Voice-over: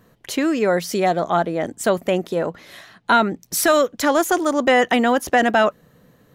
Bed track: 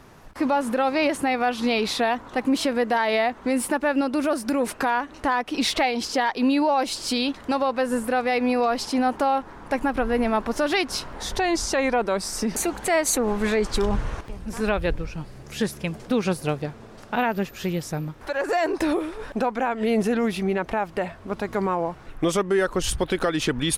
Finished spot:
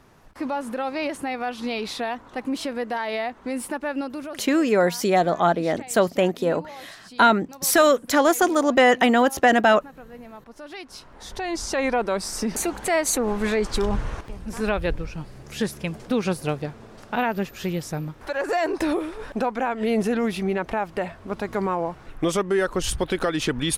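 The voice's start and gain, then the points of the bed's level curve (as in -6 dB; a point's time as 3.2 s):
4.10 s, -0.5 dB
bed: 4.02 s -5.5 dB
4.64 s -20 dB
10.44 s -20 dB
11.85 s -0.5 dB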